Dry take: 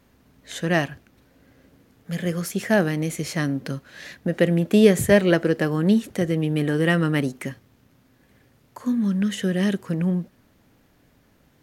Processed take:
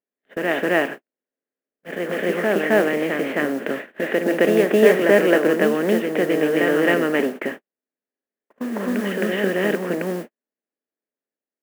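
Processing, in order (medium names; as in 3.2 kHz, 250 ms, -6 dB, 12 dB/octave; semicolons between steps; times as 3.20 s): spectral levelling over time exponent 0.6; steep low-pass 2.9 kHz 36 dB/octave; modulation noise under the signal 26 dB; high-pass 250 Hz 24 dB/octave; on a send: reverse echo 265 ms -3.5 dB; on the sum: gate -29 dBFS, range -55 dB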